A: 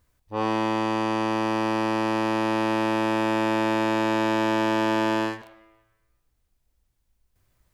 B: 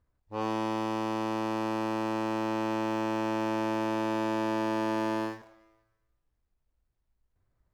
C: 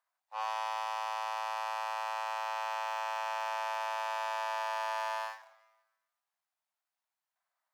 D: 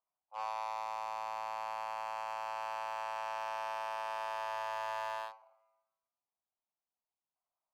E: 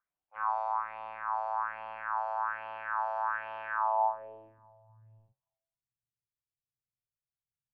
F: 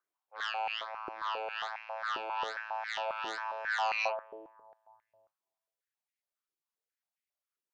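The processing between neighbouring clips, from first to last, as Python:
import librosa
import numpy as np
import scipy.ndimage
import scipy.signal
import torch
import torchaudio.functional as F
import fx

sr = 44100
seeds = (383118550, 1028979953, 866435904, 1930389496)

y1 = scipy.signal.medfilt(x, 15)
y1 = y1 * 10.0 ** (-6.0 / 20.0)
y2 = scipy.signal.sosfilt(scipy.signal.butter(8, 670.0, 'highpass', fs=sr, output='sos'), y1)
y3 = fx.wiener(y2, sr, points=25)
y3 = y3 * 10.0 ** (-1.5 / 20.0)
y4 = fx.filter_sweep_lowpass(y3, sr, from_hz=1500.0, to_hz=130.0, start_s=3.76, end_s=4.88, q=4.4)
y4 = fx.phaser_stages(y4, sr, stages=4, low_hz=280.0, high_hz=1400.0, hz=1.2, feedback_pct=50)
y4 = y4 * 10.0 ** (3.5 / 20.0)
y5 = fx.cheby_harmonics(y4, sr, harmonics=(3, 6, 7, 8), levels_db=(-7, -30, -14, -43), full_scale_db=-17.5)
y5 = fx.filter_held_highpass(y5, sr, hz=7.4, low_hz=360.0, high_hz=2100.0)
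y5 = y5 * 10.0 ** (-6.0 / 20.0)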